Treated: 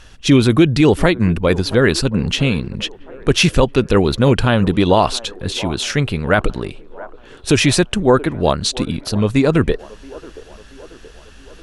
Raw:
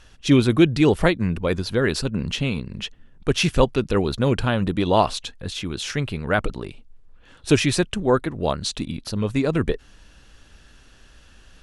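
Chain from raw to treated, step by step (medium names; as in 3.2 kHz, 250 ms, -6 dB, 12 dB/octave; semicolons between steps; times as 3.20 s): feedback echo behind a band-pass 677 ms, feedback 56%, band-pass 680 Hz, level -18.5 dB; loudness maximiser +8.5 dB; trim -1 dB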